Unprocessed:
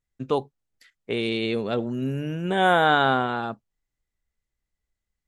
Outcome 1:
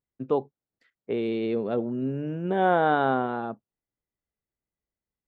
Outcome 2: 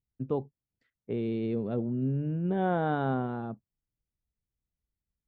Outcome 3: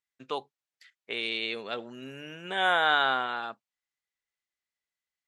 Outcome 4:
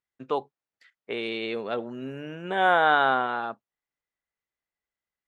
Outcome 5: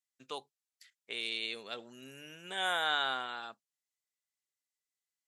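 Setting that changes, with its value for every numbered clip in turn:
band-pass, frequency: 370, 120, 2900, 1200, 7900 Hz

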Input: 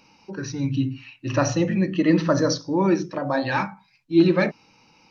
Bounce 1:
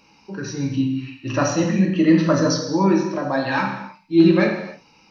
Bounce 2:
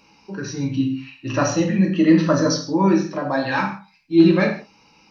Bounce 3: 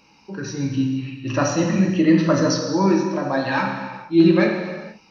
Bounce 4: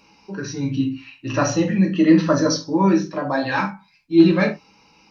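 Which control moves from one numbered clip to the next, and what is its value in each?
non-linear reverb, gate: 0.33, 0.18, 0.51, 0.1 s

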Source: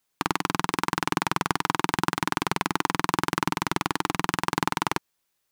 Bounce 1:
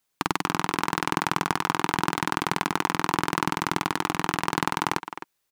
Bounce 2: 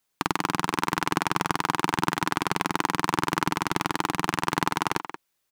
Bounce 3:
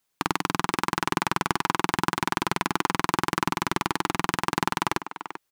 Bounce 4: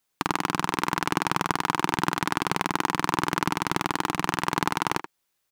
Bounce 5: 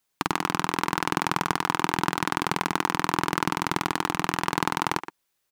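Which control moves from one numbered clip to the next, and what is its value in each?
speakerphone echo, time: 260, 180, 390, 80, 120 ms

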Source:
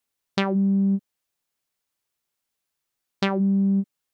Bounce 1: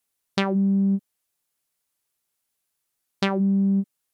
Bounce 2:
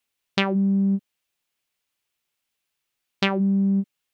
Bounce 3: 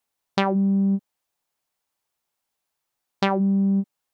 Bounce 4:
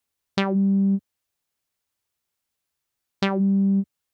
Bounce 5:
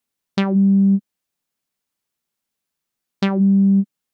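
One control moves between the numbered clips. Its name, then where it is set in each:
bell, frequency: 11000, 2700, 820, 78, 210 Hz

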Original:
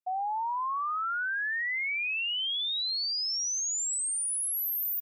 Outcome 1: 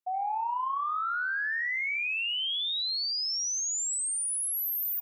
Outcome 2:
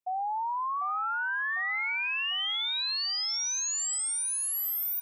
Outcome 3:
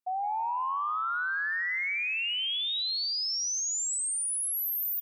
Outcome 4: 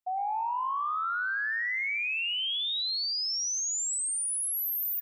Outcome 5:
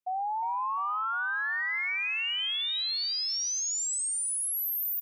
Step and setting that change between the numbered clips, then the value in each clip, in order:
tape echo, time: 66, 748, 162, 102, 354 ms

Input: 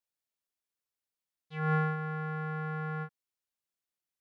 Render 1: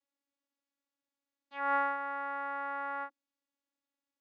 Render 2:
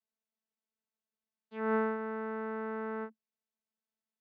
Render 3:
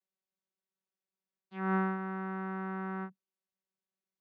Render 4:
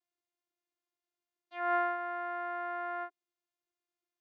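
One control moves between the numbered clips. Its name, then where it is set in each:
vocoder, frequency: 280, 220, 190, 350 Hz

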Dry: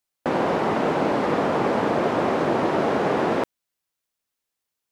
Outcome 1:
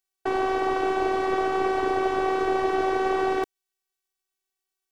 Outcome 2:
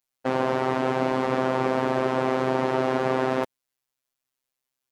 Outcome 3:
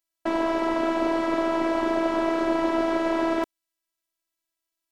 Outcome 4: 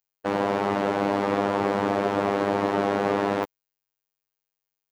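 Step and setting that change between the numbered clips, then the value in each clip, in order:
robotiser, frequency: 380, 130, 330, 100 Hz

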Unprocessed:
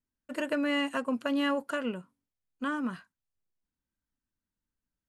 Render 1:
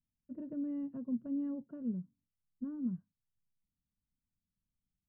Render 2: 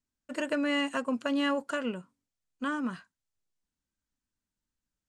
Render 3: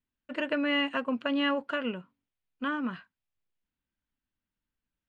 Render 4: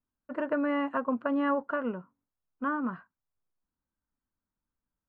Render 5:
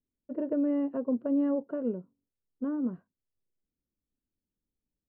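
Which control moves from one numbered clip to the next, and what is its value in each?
synth low-pass, frequency: 170, 7600, 3000, 1200, 450 Hz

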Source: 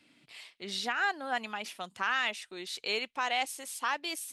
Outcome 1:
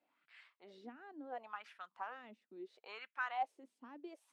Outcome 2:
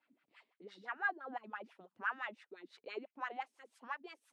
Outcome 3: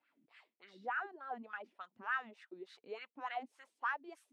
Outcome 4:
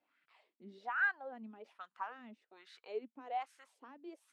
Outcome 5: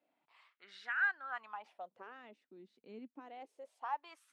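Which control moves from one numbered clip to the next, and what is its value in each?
wah, rate: 0.72, 5.9, 3.4, 1.2, 0.27 Hz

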